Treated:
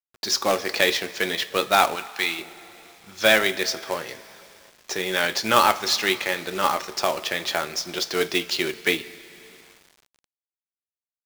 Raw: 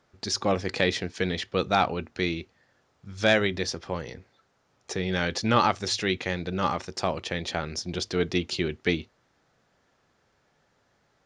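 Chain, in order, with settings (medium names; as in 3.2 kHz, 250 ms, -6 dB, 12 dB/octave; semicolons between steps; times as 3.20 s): frequency weighting A; two-slope reverb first 0.23 s, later 3.2 s, from -18 dB, DRR 9 dB; companded quantiser 4-bit; 1.95–2.39 s: resonant low shelf 700 Hz -6.5 dB, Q 1.5; trim +5 dB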